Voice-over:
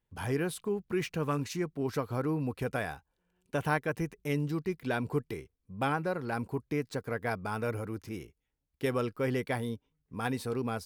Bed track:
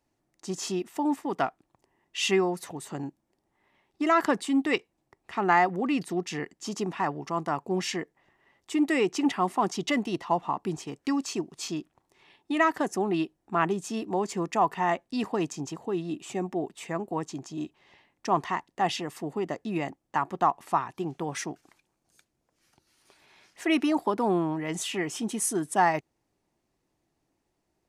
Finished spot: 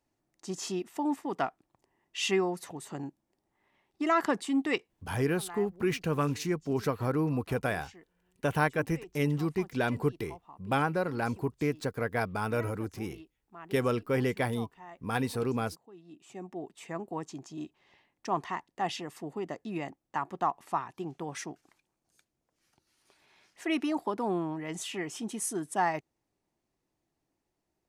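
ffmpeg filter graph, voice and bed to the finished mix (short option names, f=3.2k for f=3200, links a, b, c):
-filter_complex "[0:a]adelay=4900,volume=2.5dB[a];[1:a]volume=13.5dB,afade=t=out:st=5.06:d=0.31:silence=0.112202,afade=t=in:st=16.02:d=0.95:silence=0.141254[b];[a][b]amix=inputs=2:normalize=0"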